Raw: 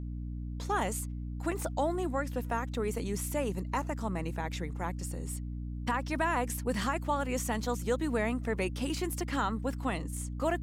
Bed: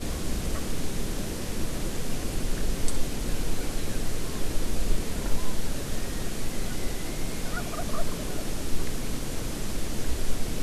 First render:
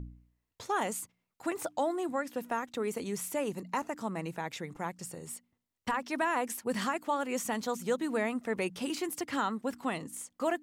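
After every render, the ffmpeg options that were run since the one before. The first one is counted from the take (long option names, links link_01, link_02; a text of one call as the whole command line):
ffmpeg -i in.wav -af "bandreject=frequency=60:width_type=h:width=4,bandreject=frequency=120:width_type=h:width=4,bandreject=frequency=180:width_type=h:width=4,bandreject=frequency=240:width_type=h:width=4,bandreject=frequency=300:width_type=h:width=4" out.wav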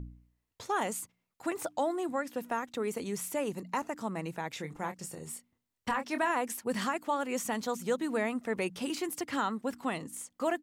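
ffmpeg -i in.wav -filter_complex "[0:a]asplit=3[link_01][link_02][link_03];[link_01]afade=type=out:start_time=4.57:duration=0.02[link_04];[link_02]asplit=2[link_05][link_06];[link_06]adelay=26,volume=-8.5dB[link_07];[link_05][link_07]amix=inputs=2:normalize=0,afade=type=in:start_time=4.57:duration=0.02,afade=type=out:start_time=6.31:duration=0.02[link_08];[link_03]afade=type=in:start_time=6.31:duration=0.02[link_09];[link_04][link_08][link_09]amix=inputs=3:normalize=0" out.wav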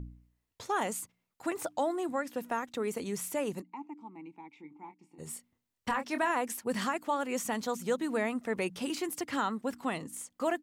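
ffmpeg -i in.wav -filter_complex "[0:a]asplit=3[link_01][link_02][link_03];[link_01]afade=type=out:start_time=3.61:duration=0.02[link_04];[link_02]asplit=3[link_05][link_06][link_07];[link_05]bandpass=frequency=300:width_type=q:width=8,volume=0dB[link_08];[link_06]bandpass=frequency=870:width_type=q:width=8,volume=-6dB[link_09];[link_07]bandpass=frequency=2240:width_type=q:width=8,volume=-9dB[link_10];[link_08][link_09][link_10]amix=inputs=3:normalize=0,afade=type=in:start_time=3.61:duration=0.02,afade=type=out:start_time=5.18:duration=0.02[link_11];[link_03]afade=type=in:start_time=5.18:duration=0.02[link_12];[link_04][link_11][link_12]amix=inputs=3:normalize=0" out.wav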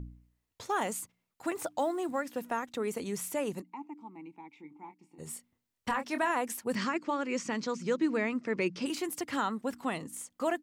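ffmpeg -i in.wav -filter_complex "[0:a]asettb=1/sr,asplit=3[link_01][link_02][link_03];[link_01]atrim=end=0.674[link_04];[link_02]atrim=start=0.67:end=2.43,asetpts=PTS-STARTPTS,afade=type=in:duration=0.004:curve=qsin,afade=type=out:start_time=1.756:duration=0.004:curve=qsin,acrusher=bits=9:mode=log:mix=0:aa=0.000001[link_05];[link_03]atrim=start=2.426[link_06];[link_04][link_05]acrossfade=duration=0.004:curve1=hsin:curve2=qsin[link_07];[link_07][link_06]acrossfade=duration=0.004:curve1=qsin:curve2=hsin,asettb=1/sr,asplit=3[link_08][link_09][link_10];[link_08]atrim=end=6.754[link_11];[link_09]atrim=start=6.75:end=8.86,asetpts=PTS-STARTPTS,afade=type=in:duration=0.004:curve=qsin,afade=type=out:start_time=2.106:duration=0.004:curve=qsin,highpass=120,equalizer=frequency=150:width_type=q:width=4:gain=9,equalizer=frequency=330:width_type=q:width=4:gain=7,equalizer=frequency=750:width_type=q:width=4:gain=-9,equalizer=frequency=2300:width_type=q:width=4:gain=4,equalizer=frequency=3500:width_type=q:width=4:gain=-4,equalizer=frequency=5000:width_type=q:width=4:gain=5,lowpass=frequency=6600:width=0.5412,lowpass=frequency=6600:width=1.3066[link_12];[link_10]atrim=start=8.856[link_13];[link_11][link_12]acrossfade=duration=0.004:curve1=hsin:curve2=qsin[link_14];[link_14][link_13]acrossfade=duration=0.004:curve1=qsin:curve2=hsin" out.wav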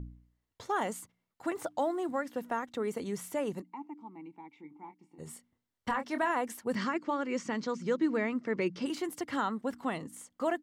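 ffmpeg -i in.wav -af "highshelf=frequency=4600:gain=-8,bandreject=frequency=2500:width=11" out.wav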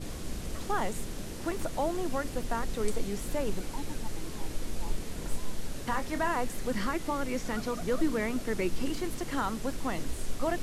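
ffmpeg -i in.wav -i bed.wav -filter_complex "[1:a]volume=-7.5dB[link_01];[0:a][link_01]amix=inputs=2:normalize=0" out.wav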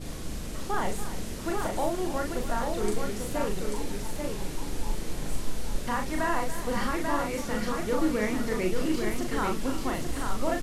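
ffmpeg -i in.wav -filter_complex "[0:a]asplit=2[link_01][link_02];[link_02]adelay=38,volume=-3.5dB[link_03];[link_01][link_03]amix=inputs=2:normalize=0,aecho=1:1:285|839:0.224|0.596" out.wav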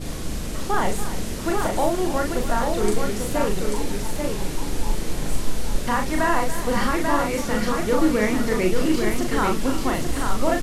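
ffmpeg -i in.wav -af "volume=7dB" out.wav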